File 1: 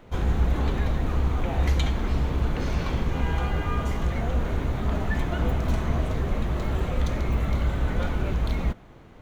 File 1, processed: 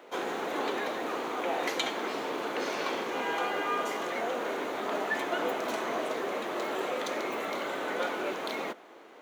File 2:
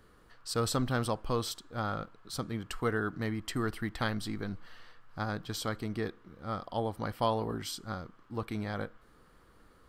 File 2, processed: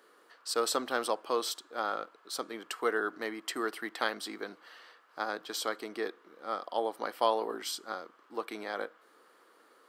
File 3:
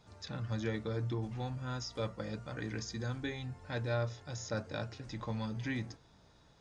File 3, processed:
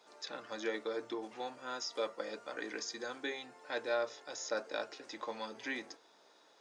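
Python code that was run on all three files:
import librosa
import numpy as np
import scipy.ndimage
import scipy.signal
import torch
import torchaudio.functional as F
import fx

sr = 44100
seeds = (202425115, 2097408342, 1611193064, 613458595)

y = scipy.signal.sosfilt(scipy.signal.butter(4, 340.0, 'highpass', fs=sr, output='sos'), x)
y = y * 10.0 ** (2.5 / 20.0)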